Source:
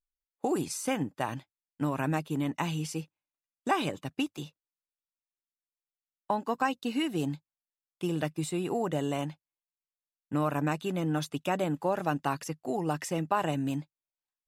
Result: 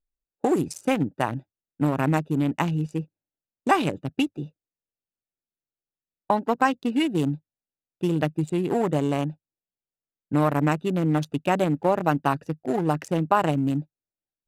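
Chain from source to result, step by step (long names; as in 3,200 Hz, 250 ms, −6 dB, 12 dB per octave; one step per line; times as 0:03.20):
adaptive Wiener filter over 41 samples
level +8 dB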